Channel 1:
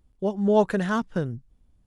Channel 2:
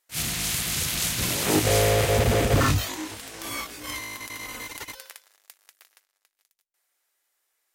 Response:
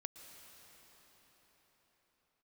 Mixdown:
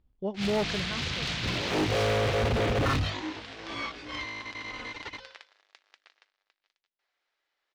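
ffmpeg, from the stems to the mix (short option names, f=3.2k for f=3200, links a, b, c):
-filter_complex "[0:a]volume=-6.5dB,afade=t=out:st=0.62:d=0.36:silence=0.354813[a];[1:a]bandreject=f=50:t=h:w=6,bandreject=f=100:t=h:w=6,bandreject=f=150:t=h:w=6,bandreject=f=200:t=h:w=6,bandreject=f=250:t=h:w=6,adelay=250,volume=-1dB[b];[a][b]amix=inputs=2:normalize=0,lowpass=f=4.4k:w=0.5412,lowpass=f=4.4k:w=1.3066,asoftclip=type=hard:threshold=-23dB"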